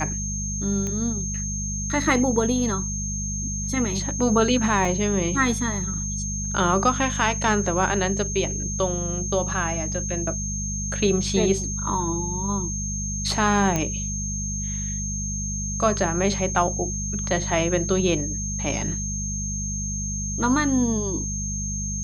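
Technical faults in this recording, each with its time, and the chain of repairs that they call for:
mains hum 50 Hz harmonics 4 −30 dBFS
whistle 6,400 Hz −29 dBFS
0:00.87: click −17 dBFS
0:04.85: drop-out 2.6 ms
0:13.76: click −10 dBFS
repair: click removal
hum removal 50 Hz, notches 4
notch filter 6,400 Hz, Q 30
repair the gap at 0:04.85, 2.6 ms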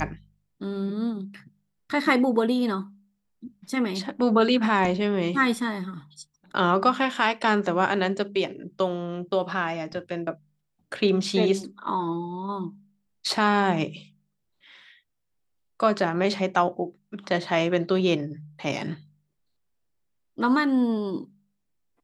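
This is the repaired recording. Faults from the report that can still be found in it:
none of them is left

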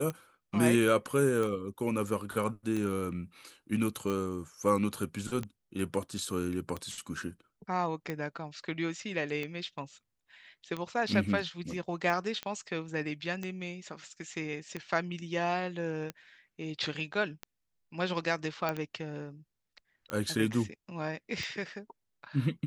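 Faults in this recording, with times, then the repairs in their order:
scratch tick 45 rpm −22 dBFS
0:12.43: click −21 dBFS
0:18.69: click −17 dBFS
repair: click removal

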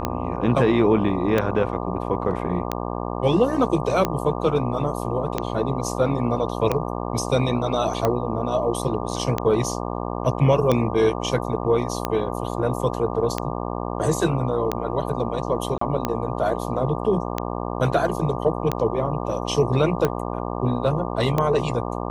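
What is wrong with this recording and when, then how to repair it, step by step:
mains buzz 60 Hz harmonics 20 −28 dBFS
scratch tick 45 rpm −8 dBFS
0:15.78–0:15.81: drop-out 34 ms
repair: click removal
hum removal 60 Hz, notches 20
repair the gap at 0:15.78, 34 ms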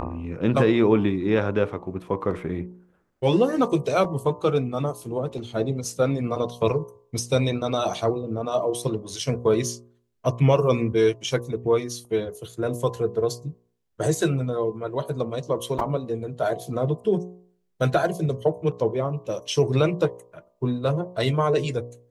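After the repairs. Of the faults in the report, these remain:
none of them is left

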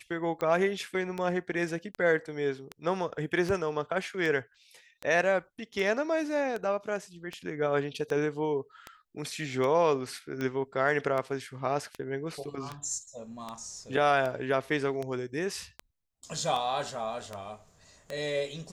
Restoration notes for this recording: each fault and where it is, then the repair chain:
scratch tick 78 rpm −21 dBFS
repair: click removal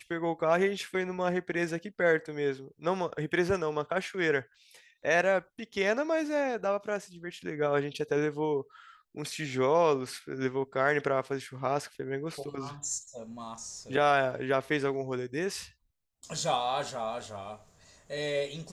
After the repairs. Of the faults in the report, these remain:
none of them is left

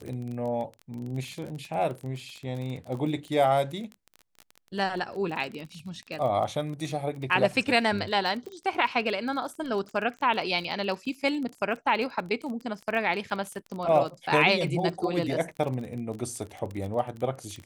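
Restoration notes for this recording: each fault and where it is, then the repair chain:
surface crackle 24 per second −33 dBFS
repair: click removal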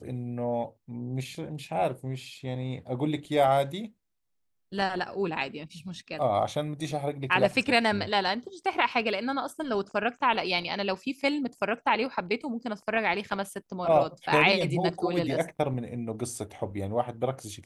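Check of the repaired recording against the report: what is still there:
none of them is left

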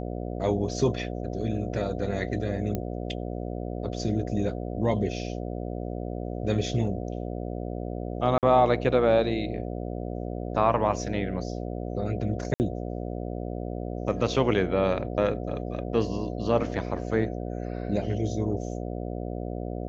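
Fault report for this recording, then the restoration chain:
mains buzz 60 Hz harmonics 12 −33 dBFS
0:02.75: click −16 dBFS
0:08.38–0:08.43: drop-out 48 ms
0:12.54–0:12.60: drop-out 59 ms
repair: click removal
hum removal 60 Hz, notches 12
repair the gap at 0:08.38, 48 ms
repair the gap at 0:12.54, 59 ms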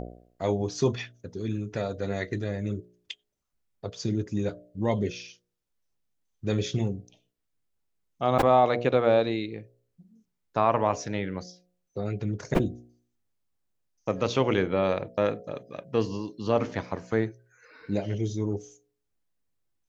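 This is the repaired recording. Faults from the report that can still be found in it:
none of them is left

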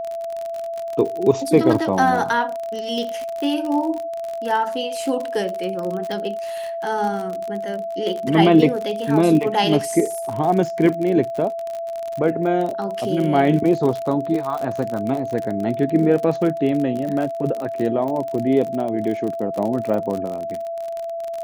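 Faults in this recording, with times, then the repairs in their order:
surface crackle 45 per second −24 dBFS
whistle 670 Hz −25 dBFS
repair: click removal
notch filter 670 Hz, Q 30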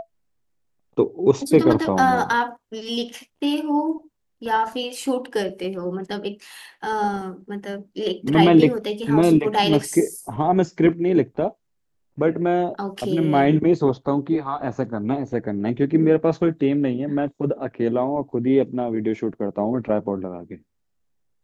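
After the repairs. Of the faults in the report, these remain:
none of them is left

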